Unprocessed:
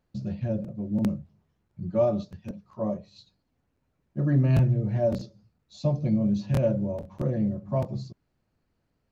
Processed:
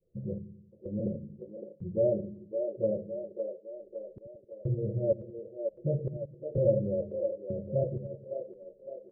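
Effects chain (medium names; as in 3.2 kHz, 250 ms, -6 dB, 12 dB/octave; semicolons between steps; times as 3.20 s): delay that grows with frequency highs late, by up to 288 ms; steep low-pass 580 Hz 72 dB/octave; wow and flutter 17 cents; in parallel at -1 dB: compression, threshold -36 dBFS, peak gain reduction 17 dB; on the sum: trance gate "xxxx.....x" 158 bpm -60 dB; resonant low shelf 340 Hz -6.5 dB, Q 3; on a send: two-band feedback delay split 300 Hz, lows 88 ms, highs 560 ms, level -6 dB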